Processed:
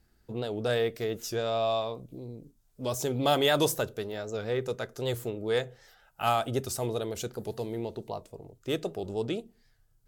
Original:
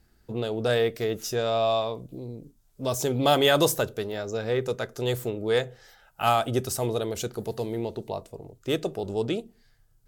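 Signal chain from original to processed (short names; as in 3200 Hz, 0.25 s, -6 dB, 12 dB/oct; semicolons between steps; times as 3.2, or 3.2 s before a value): record warp 78 rpm, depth 100 cents; gain -4 dB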